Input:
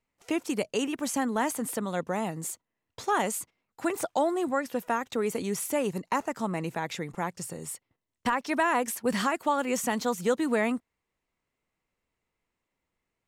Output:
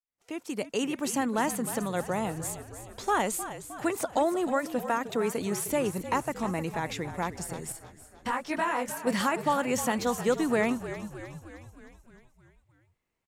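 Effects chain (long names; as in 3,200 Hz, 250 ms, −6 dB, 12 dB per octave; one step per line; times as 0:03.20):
fade in at the beginning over 0.87 s
echo with shifted repeats 309 ms, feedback 59%, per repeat −49 Hz, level −12 dB
0:07.72–0:09.07: micro pitch shift up and down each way 44 cents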